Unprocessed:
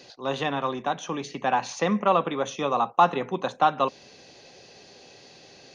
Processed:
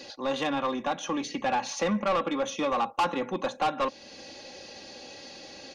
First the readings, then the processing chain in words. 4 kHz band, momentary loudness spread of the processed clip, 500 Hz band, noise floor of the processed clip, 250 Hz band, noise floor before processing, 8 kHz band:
0.0 dB, 16 LU, -3.0 dB, -49 dBFS, -0.5 dB, -51 dBFS, n/a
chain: comb 3.6 ms, depth 63%; in parallel at +1 dB: compressor, threshold -35 dBFS, peak gain reduction 22 dB; on the sum: soft clip -18 dBFS, distortion -9 dB; gain -3 dB

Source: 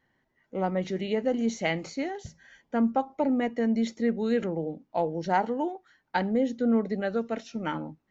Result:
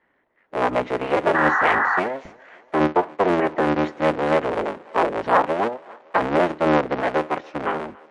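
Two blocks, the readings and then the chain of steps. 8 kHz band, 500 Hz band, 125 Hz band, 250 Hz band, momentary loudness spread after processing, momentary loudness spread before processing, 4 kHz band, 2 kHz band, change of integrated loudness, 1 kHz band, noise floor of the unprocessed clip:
n/a, +8.0 dB, +4.0 dB, +1.5 dB, 9 LU, 8 LU, +5.5 dB, +13.5 dB, +7.5 dB, +11.0 dB, -75 dBFS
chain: cycle switcher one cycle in 3, inverted; three-band isolator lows -14 dB, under 250 Hz, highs -22 dB, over 2600 Hz; on a send: thinning echo 0.282 s, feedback 68%, high-pass 290 Hz, level -23.5 dB; on the sum: painted sound noise, 1.34–2, 720–2000 Hz -28 dBFS; gain +8.5 dB; MP3 48 kbps 24000 Hz

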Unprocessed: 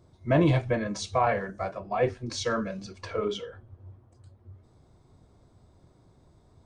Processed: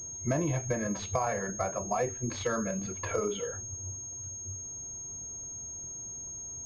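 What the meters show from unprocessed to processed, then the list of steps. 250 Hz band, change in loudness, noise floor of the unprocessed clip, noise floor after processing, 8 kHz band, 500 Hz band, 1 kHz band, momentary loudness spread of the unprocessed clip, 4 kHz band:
-4.5 dB, -5.5 dB, -61 dBFS, -42 dBFS, +13.0 dB, -4.0 dB, -4.5 dB, 13 LU, -7.5 dB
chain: compressor 6:1, threshold -32 dBFS, peak gain reduction 14 dB; pulse-width modulation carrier 6500 Hz; gain +4.5 dB

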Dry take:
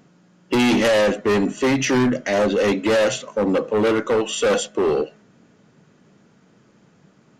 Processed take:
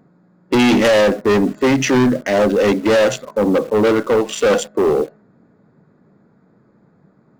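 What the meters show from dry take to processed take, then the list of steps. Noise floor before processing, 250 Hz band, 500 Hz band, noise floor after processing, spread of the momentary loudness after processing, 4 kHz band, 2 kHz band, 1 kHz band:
-56 dBFS, +4.5 dB, +4.0 dB, -55 dBFS, 5 LU, +2.0 dB, +3.0 dB, +4.0 dB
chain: Wiener smoothing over 15 samples; in parallel at -8 dB: bit-crush 6-bit; on the sum: gain +1.5 dB

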